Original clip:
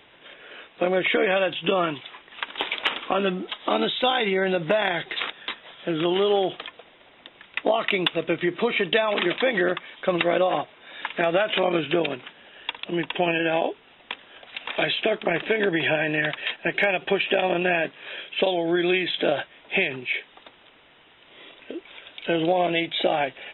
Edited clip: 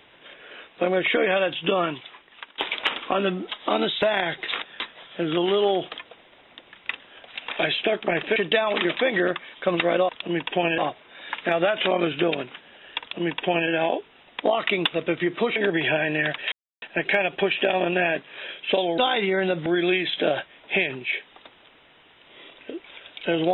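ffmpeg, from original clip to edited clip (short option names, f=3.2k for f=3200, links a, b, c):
-filter_complex "[0:a]asplit=12[a][b][c][d][e][f][g][h][i][j][k][l];[a]atrim=end=2.58,asetpts=PTS-STARTPTS,afade=t=out:st=1.62:d=0.96:c=qsin:silence=0.141254[m];[b]atrim=start=2.58:end=4.022,asetpts=PTS-STARTPTS,afade=t=in:d=0.004:c=hsin:silence=0.141254[n];[c]atrim=start=4.698:end=7.612[o];[d]atrim=start=14.118:end=15.552[p];[e]atrim=start=8.768:end=10.502[q];[f]atrim=start=12.718:end=13.412[r];[g]atrim=start=10.498:end=14.122[s];[h]atrim=start=7.608:end=8.772[t];[i]atrim=start=15.548:end=16.51,asetpts=PTS-STARTPTS,afade=t=out:st=0.958:d=0.004:c=hsin,apad=pad_dur=0.3[u];[j]atrim=start=16.51:end=18.672,asetpts=PTS-STARTPTS,afade=t=in:d=0.004:c=hsin[v];[k]atrim=start=4.018:end=4.702[w];[l]atrim=start=18.668[x];[m][n]concat=n=2:v=0:a=1[y];[y][o]acrossfade=d=0.004:c1=hsin:c2=hsin[z];[z][p]acrossfade=d=0.004:c1=hsin:c2=hsin[aa];[aa][q]acrossfade=d=0.004:c1=hsin:c2=hsin[ab];[ab][r]acrossfade=d=0.004:c1=hsin:c2=hsin[ac];[ac][s]acrossfade=d=0.004:c1=hsin:c2=hsin[ad];[ad][t]acrossfade=d=0.004:c1=hsin:c2=hsin[ae];[u][v]concat=n=2:v=0:a=1[af];[ae][af]acrossfade=d=0.004:c1=hsin:c2=hsin[ag];[ag][w]acrossfade=d=0.004:c1=hsin:c2=hsin[ah];[ah][x]acrossfade=d=0.004:c1=hsin:c2=hsin"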